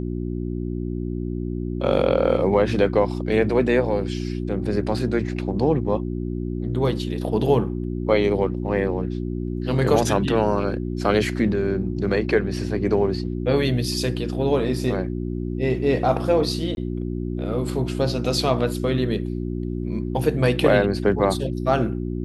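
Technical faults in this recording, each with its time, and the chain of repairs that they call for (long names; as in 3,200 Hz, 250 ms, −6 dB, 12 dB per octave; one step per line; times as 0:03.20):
mains hum 60 Hz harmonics 6 −27 dBFS
0:16.75–0:16.77: drop-out 21 ms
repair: hum removal 60 Hz, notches 6
repair the gap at 0:16.75, 21 ms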